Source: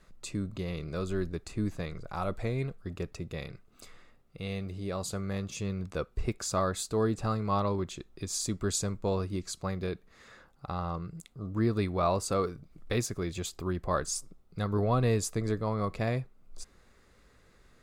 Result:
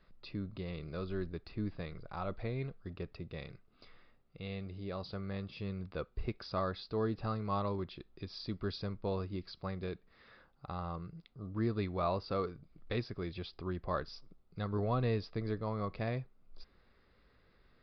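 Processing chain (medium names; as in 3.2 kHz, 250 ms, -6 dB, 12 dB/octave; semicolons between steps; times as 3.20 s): resampled via 11.025 kHz; trim -6 dB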